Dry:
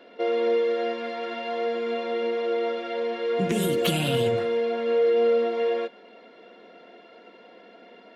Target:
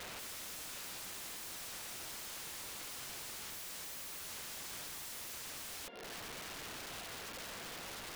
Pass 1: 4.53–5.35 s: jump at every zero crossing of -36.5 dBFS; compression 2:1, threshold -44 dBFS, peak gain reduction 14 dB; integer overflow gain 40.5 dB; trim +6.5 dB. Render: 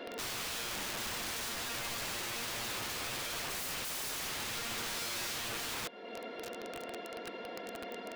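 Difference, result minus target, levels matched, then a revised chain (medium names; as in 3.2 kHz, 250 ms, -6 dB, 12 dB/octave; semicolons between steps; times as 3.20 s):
integer overflow: distortion -12 dB
4.53–5.35 s: jump at every zero crossing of -36.5 dBFS; compression 2:1, threshold -44 dBFS, peak gain reduction 14 dB; integer overflow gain 48 dB; trim +6.5 dB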